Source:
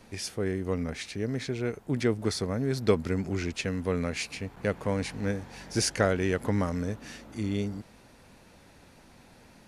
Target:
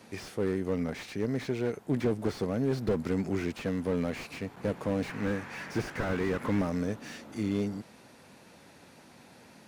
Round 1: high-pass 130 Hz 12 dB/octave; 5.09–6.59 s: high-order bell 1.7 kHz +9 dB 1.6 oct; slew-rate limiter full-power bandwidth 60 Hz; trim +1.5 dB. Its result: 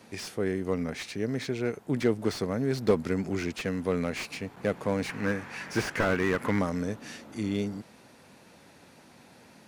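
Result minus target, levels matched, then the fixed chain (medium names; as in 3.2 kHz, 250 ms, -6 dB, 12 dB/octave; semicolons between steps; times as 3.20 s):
slew-rate limiter: distortion -5 dB
high-pass 130 Hz 12 dB/octave; 5.09–6.59 s: high-order bell 1.7 kHz +9 dB 1.6 oct; slew-rate limiter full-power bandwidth 22 Hz; trim +1.5 dB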